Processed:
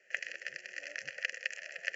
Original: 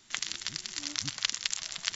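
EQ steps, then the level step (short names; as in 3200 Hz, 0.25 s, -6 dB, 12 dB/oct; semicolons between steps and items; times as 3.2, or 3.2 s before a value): vowel filter e; BPF 180–6900 Hz; fixed phaser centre 1000 Hz, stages 6; +14.5 dB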